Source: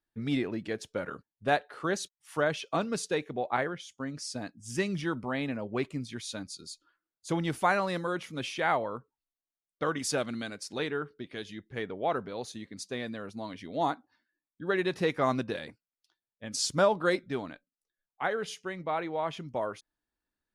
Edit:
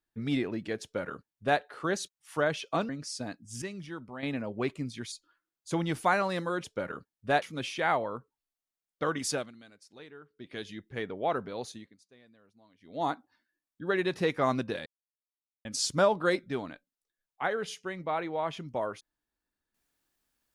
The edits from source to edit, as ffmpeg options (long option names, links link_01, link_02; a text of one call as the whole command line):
ffmpeg -i in.wav -filter_complex "[0:a]asplit=13[link_01][link_02][link_03][link_04][link_05][link_06][link_07][link_08][link_09][link_10][link_11][link_12][link_13];[link_01]atrim=end=2.892[link_14];[link_02]atrim=start=4.038:end=4.772[link_15];[link_03]atrim=start=4.768:end=5.382,asetpts=PTS-STARTPTS,volume=-9dB[link_16];[link_04]atrim=start=5.378:end=6.272[link_17];[link_05]atrim=start=6.698:end=8.222[link_18];[link_06]atrim=start=0.818:end=1.602[link_19];[link_07]atrim=start=8.218:end=10.32,asetpts=PTS-STARTPTS,afade=type=out:start_time=1.882:duration=0.22:silence=0.149624[link_20];[link_08]atrim=start=10.32:end=11.12,asetpts=PTS-STARTPTS,volume=-16.5dB[link_21];[link_09]atrim=start=11.12:end=12.77,asetpts=PTS-STARTPTS,afade=type=in:duration=0.22:silence=0.149624,afade=type=out:start_time=1.34:duration=0.31:silence=0.0707946[link_22];[link_10]atrim=start=12.77:end=13.6,asetpts=PTS-STARTPTS,volume=-23dB[link_23];[link_11]atrim=start=13.6:end=15.66,asetpts=PTS-STARTPTS,afade=type=in:duration=0.31:silence=0.0707946,afade=type=out:start_time=2.056:duration=0.004:curve=hsin[link_24];[link_12]atrim=start=15.66:end=16.45,asetpts=PTS-STARTPTS,volume=0[link_25];[link_13]atrim=start=16.45,asetpts=PTS-STARTPTS,afade=type=in:duration=0.004:curve=hsin[link_26];[link_14][link_15]acrossfade=duration=0.004:curve1=hsin:curve2=hsin[link_27];[link_27][link_16]acrossfade=duration=0.004:curve1=hsin:curve2=hsin[link_28];[link_28][link_17]acrossfade=duration=0.004:curve1=hsin:curve2=hsin[link_29];[link_29][link_18]acrossfade=duration=0.004:curve1=hsin:curve2=hsin[link_30];[link_30][link_19]acrossfade=duration=0.004:curve1=hsin:curve2=hsin[link_31];[link_20][link_21][link_22][link_23][link_24][link_25][link_26]concat=n=7:v=0:a=1[link_32];[link_31][link_32]acrossfade=duration=0.004:curve1=hsin:curve2=hsin" out.wav